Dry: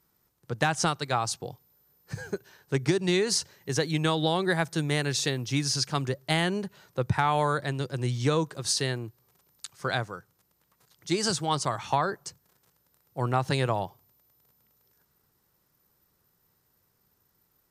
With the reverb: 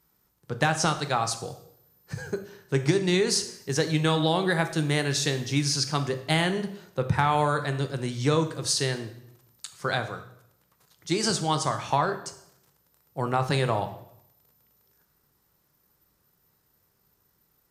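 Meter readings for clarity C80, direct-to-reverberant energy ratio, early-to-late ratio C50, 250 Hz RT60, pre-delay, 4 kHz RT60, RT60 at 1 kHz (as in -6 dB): 14.0 dB, 7.5 dB, 11.5 dB, 0.85 s, 8 ms, 0.65 s, 0.75 s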